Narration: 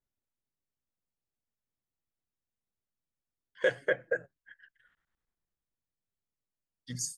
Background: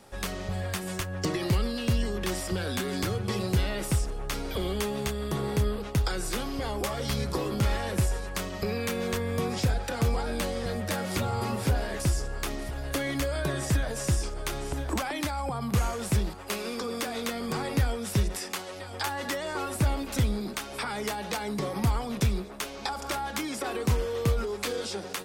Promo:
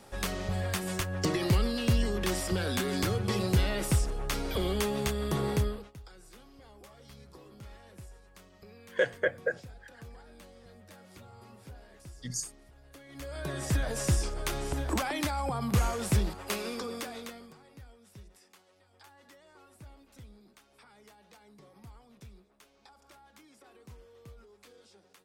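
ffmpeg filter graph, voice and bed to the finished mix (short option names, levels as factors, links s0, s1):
-filter_complex "[0:a]adelay=5350,volume=1.06[s0];[1:a]volume=12.6,afade=t=out:st=5.5:d=0.42:silence=0.0749894,afade=t=in:st=13.08:d=0.89:silence=0.0794328,afade=t=out:st=16.46:d=1.09:silence=0.0562341[s1];[s0][s1]amix=inputs=2:normalize=0"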